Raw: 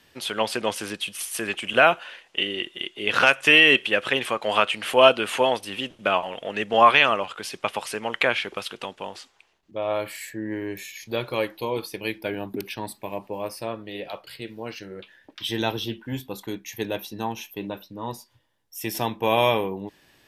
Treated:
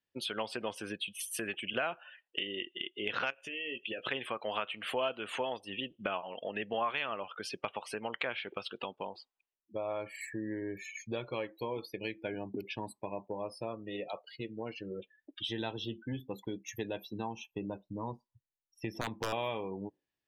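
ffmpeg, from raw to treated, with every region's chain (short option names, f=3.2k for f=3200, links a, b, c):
-filter_complex "[0:a]asettb=1/sr,asplit=3[a][b][c];[a]atrim=end=3.304[d];[b]atrim=start=3.3:end=4.07,asetpts=PTS-STARTPTS,afade=t=in:d=0.004:c=qsin,afade=t=out:st=0.766:d=0.004:c=qsin,equalizer=f=1.3k:t=o:w=1.5:g=-7.5,asplit=2[e][f];[f]adelay=17,volume=-7.5dB[g];[e][g]amix=inputs=2:normalize=0,atrim=end_sample=33957,acompressor=threshold=-30dB:ratio=5:attack=3.2:release=140:knee=1:detection=peak[h];[c]atrim=start=4.066[i];[d][h]acrossfade=d=0.004:c1=hsin:c2=qsin[j];[j][i]acrossfade=d=0.004:c1=qsin:c2=hsin,asettb=1/sr,asplit=3[k][l][m];[k]atrim=end=17.514[n];[l]atrim=start=17.51:end=19.33,asetpts=PTS-STARTPTS,afade=t=in:d=0.004:c=qsin,afade=t=out:st=1.816:d=0.004:c=qsin,lowpass=f=3.2k:p=1,lowshelf=f=96:g=8,aeval=exprs='(mod(4.73*val(0)+1,2)-1)/4.73':c=same[o];[m]atrim=start=19.326[p];[n][o]acrossfade=d=0.004:c1=hsin:c2=qsin[q];[q][p]acrossfade=d=0.004:c1=qsin:c2=hsin,afftdn=nr=33:nf=-37,highshelf=f=7.9k:g=-5,acompressor=threshold=-37dB:ratio=3"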